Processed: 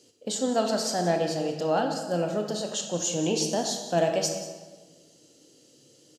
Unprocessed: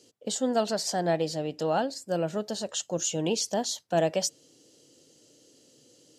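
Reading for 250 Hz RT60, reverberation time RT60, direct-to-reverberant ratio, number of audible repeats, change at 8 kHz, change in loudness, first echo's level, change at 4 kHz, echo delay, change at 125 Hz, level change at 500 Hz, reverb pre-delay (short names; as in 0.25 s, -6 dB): 1.6 s, 1.4 s, 3.0 dB, 1, +1.0 dB, +1.5 dB, -16.5 dB, +1.5 dB, 0.183 s, +2.0 dB, +1.5 dB, 19 ms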